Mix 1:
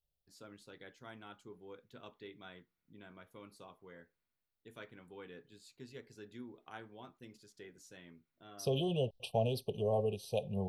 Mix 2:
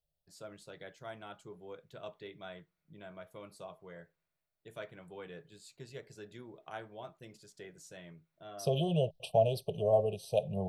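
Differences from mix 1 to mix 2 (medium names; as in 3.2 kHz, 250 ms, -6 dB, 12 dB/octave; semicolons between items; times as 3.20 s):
first voice +3.0 dB; master: add graphic EQ with 31 bands 160 Hz +9 dB, 250 Hz -11 dB, 630 Hz +11 dB, 8 kHz +5 dB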